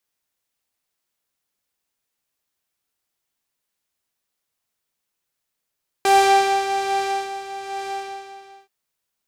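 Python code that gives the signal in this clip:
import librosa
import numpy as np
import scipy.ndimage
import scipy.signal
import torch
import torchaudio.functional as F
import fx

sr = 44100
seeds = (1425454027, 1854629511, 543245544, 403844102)

y = fx.sub_patch_tremolo(sr, seeds[0], note=79, wave='triangle', wave2='saw', interval_st=0, detune_cents=11, level2_db=-5.0, sub_db=-9, noise_db=-12.5, kind='lowpass', cutoff_hz=5300.0, q=0.79, env_oct=1.0, env_decay_s=0.27, env_sustain_pct=40, attack_ms=1.7, decay_s=1.25, sustain_db=-14.5, release_s=0.83, note_s=1.8, lfo_hz=1.2, tremolo_db=5)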